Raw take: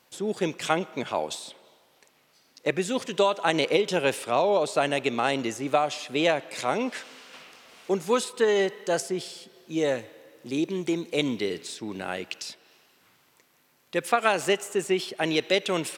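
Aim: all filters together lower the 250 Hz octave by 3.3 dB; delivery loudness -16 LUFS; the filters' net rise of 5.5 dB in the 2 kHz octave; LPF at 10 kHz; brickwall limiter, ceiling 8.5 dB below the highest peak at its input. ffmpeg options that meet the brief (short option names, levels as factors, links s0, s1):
-af "lowpass=10000,equalizer=f=250:t=o:g=-5,equalizer=f=2000:t=o:g=7,volume=3.76,alimiter=limit=0.841:level=0:latency=1"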